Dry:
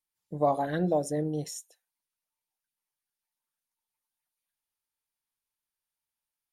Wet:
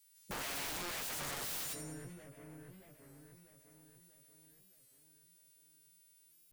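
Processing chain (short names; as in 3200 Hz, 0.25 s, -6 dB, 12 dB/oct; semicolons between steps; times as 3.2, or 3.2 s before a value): frequency quantiser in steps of 2 st; tube stage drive 39 dB, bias 0.3; bell 810 Hz -11 dB 1.9 oct; split-band echo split 2500 Hz, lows 0.637 s, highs 0.108 s, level -16 dB; wrapped overs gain 48.5 dB; record warp 33 1/3 rpm, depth 160 cents; gain +12.5 dB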